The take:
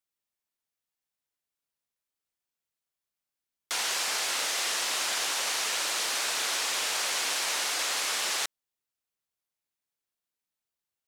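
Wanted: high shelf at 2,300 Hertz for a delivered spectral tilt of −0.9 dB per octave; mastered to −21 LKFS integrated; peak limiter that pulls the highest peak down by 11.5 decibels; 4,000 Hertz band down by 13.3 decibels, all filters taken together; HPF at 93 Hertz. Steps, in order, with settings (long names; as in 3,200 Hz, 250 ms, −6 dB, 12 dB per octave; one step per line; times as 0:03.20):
high-pass filter 93 Hz
high-shelf EQ 2,300 Hz −9 dB
parametric band 4,000 Hz −9 dB
level +22 dB
brickwall limiter −13 dBFS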